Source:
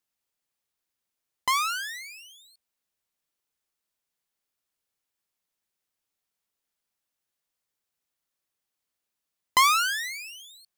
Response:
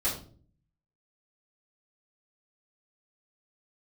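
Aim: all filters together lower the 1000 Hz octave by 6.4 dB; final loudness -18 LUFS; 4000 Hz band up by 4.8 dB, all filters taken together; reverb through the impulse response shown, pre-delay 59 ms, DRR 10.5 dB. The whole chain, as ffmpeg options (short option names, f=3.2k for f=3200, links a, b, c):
-filter_complex "[0:a]equalizer=f=1k:t=o:g=-8,equalizer=f=4k:t=o:g=6.5,asplit=2[a][b];[1:a]atrim=start_sample=2205,adelay=59[c];[b][c]afir=irnorm=-1:irlink=0,volume=-18dB[d];[a][d]amix=inputs=2:normalize=0,volume=6dB"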